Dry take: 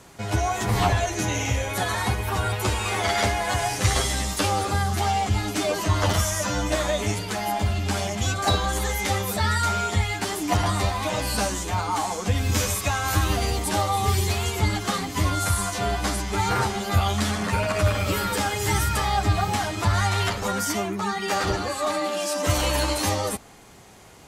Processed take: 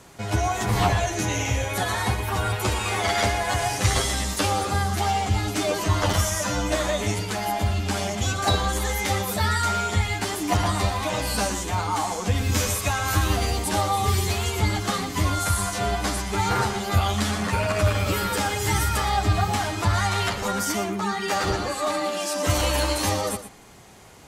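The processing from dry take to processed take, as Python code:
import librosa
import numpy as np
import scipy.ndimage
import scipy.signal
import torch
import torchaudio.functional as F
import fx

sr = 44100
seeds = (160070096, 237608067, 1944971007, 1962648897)

y = x + 10.0 ** (-12.0 / 20.0) * np.pad(x, (int(118 * sr / 1000.0), 0))[:len(x)]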